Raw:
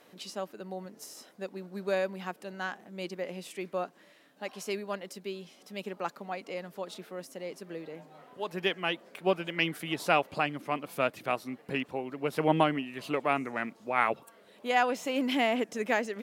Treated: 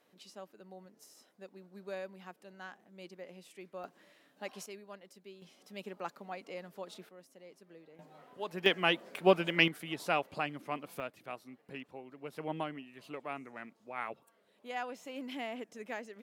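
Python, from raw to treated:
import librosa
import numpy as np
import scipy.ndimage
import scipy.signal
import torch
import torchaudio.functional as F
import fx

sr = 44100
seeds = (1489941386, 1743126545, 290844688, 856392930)

y = fx.gain(x, sr, db=fx.steps((0.0, -12.0), (3.84, -4.0), (4.66, -14.0), (5.42, -6.0), (7.09, -15.0), (7.99, -4.0), (8.66, 2.5), (9.68, -6.0), (11.0, -13.0)))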